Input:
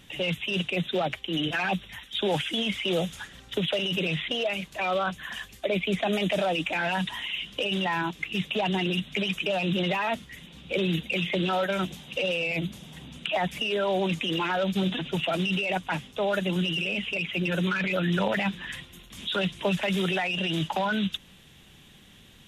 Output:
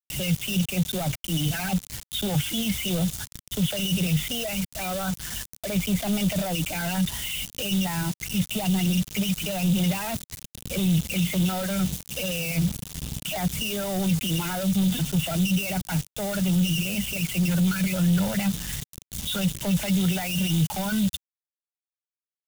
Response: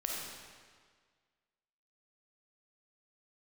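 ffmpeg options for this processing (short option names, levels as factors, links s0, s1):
-af "lowshelf=f=220:g=5,aecho=1:1:1.4:0.38,acrusher=bits=5:mix=0:aa=0.000001,asoftclip=type=tanh:threshold=0.0668,bass=f=250:g=14,treble=f=4000:g=13,volume=0.631"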